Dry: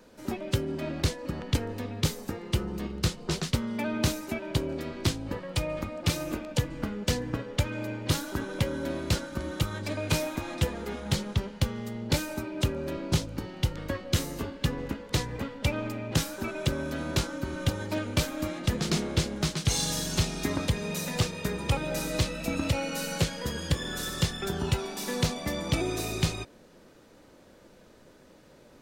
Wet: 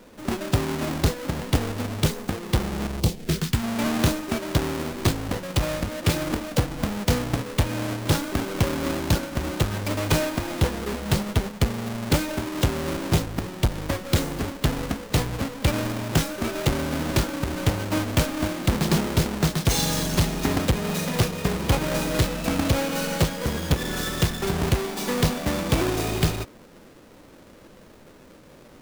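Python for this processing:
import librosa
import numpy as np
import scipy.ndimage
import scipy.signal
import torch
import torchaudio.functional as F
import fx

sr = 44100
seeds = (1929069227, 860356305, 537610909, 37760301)

y = fx.halfwave_hold(x, sr)
y = fx.peak_eq(y, sr, hz=fx.line((2.99, 1800.0), (3.62, 460.0)), db=-14.5, octaves=0.9, at=(2.99, 3.62), fade=0.02)
y = y * 10.0 ** (1.5 / 20.0)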